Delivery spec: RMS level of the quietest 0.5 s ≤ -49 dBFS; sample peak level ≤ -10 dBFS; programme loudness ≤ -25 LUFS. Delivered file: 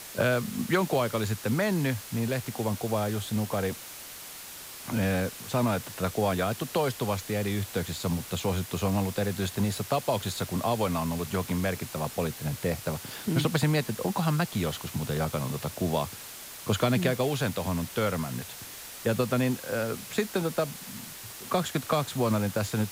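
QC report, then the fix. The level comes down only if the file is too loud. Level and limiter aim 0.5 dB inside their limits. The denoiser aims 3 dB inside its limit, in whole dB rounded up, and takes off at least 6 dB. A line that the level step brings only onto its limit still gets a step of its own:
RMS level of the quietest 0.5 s -43 dBFS: fail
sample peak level -13.5 dBFS: pass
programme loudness -29.5 LUFS: pass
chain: noise reduction 9 dB, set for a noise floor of -43 dBFS

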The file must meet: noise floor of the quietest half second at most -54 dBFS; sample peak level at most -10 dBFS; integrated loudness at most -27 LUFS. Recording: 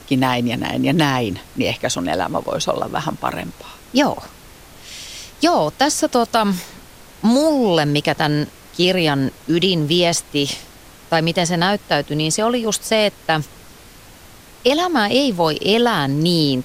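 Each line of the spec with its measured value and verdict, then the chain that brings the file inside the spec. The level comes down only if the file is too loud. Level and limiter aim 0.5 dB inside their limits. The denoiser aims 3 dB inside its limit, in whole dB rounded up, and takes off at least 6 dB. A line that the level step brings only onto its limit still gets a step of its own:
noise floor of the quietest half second -43 dBFS: fail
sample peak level -3.5 dBFS: fail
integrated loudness -18.0 LUFS: fail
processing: noise reduction 6 dB, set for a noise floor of -43 dBFS; trim -9.5 dB

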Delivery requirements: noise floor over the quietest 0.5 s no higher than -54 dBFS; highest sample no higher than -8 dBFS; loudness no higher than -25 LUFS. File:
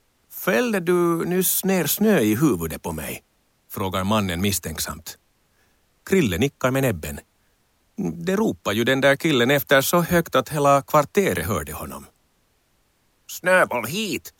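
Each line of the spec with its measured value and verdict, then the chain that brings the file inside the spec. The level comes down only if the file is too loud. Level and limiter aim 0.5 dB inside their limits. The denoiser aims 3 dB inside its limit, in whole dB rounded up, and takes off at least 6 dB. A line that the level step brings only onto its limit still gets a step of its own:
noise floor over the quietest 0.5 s -65 dBFS: pass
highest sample -5.0 dBFS: fail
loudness -21.0 LUFS: fail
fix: trim -4.5 dB

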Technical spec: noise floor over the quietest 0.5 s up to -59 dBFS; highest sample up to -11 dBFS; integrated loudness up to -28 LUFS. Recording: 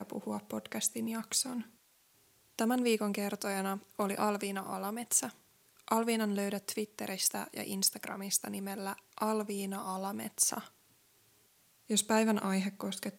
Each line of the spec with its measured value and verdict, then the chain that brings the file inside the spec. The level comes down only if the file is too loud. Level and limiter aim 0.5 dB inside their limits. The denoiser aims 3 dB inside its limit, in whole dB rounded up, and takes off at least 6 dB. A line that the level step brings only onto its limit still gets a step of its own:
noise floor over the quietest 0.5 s -68 dBFS: pass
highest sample -13.5 dBFS: pass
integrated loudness -33.5 LUFS: pass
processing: none needed

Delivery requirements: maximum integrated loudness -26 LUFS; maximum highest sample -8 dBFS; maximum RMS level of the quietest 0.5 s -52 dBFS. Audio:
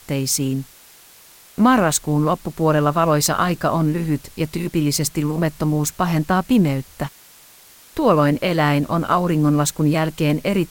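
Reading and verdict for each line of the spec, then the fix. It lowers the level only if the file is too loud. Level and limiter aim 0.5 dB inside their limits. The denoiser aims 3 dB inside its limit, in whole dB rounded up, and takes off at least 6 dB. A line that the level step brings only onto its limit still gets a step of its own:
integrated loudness -19.0 LUFS: fail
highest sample -3.5 dBFS: fail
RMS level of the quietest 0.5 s -47 dBFS: fail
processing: trim -7.5 dB

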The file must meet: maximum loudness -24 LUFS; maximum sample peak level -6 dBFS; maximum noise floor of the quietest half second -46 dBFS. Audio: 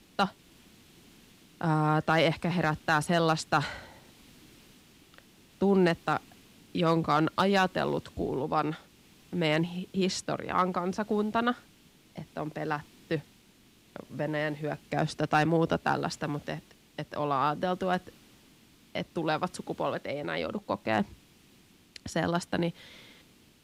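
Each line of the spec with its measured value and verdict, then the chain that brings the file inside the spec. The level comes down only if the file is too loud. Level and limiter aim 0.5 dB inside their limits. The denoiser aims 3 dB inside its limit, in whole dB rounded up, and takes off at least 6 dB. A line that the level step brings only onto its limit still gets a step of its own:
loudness -30.0 LUFS: pass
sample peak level -13.0 dBFS: pass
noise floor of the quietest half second -60 dBFS: pass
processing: none needed

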